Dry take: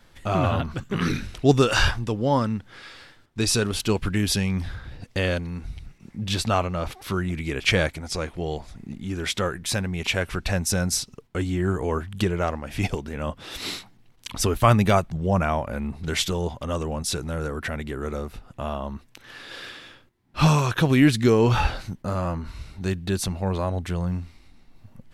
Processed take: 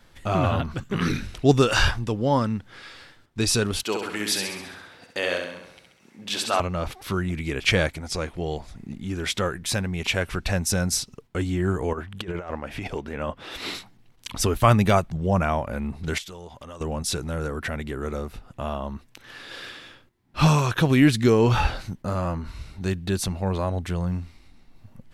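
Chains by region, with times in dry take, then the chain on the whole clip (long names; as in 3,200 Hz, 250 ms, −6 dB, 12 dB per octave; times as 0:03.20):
0:03.83–0:06.60: high-pass filter 410 Hz + flutter between parallel walls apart 11.4 metres, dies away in 0.79 s
0:11.93–0:13.75: bass and treble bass −6 dB, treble −9 dB + compressor whose output falls as the input rises −29 dBFS, ratio −0.5
0:16.18–0:16.81: low-shelf EQ 440 Hz −8 dB + downward compressor 3 to 1, threshold −39 dBFS
whole clip: no processing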